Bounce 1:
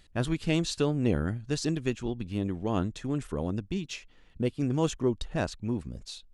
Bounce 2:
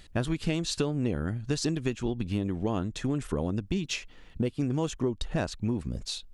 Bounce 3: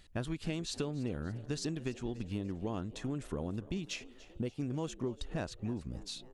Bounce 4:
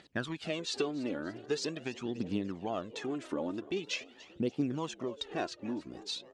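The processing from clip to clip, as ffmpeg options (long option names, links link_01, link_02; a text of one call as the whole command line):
ffmpeg -i in.wav -af "acompressor=threshold=-32dB:ratio=6,volume=7dB" out.wav
ffmpeg -i in.wav -filter_complex "[0:a]asplit=5[link_01][link_02][link_03][link_04][link_05];[link_02]adelay=290,afreqshift=75,volume=-19dB[link_06];[link_03]adelay=580,afreqshift=150,volume=-24.4dB[link_07];[link_04]adelay=870,afreqshift=225,volume=-29.7dB[link_08];[link_05]adelay=1160,afreqshift=300,volume=-35.1dB[link_09];[link_01][link_06][link_07][link_08][link_09]amix=inputs=5:normalize=0,volume=-8dB" out.wav
ffmpeg -i in.wav -af "aphaser=in_gain=1:out_gain=1:delay=3.6:decay=0.6:speed=0.44:type=triangular,highpass=260,lowpass=5600,volume=4dB" out.wav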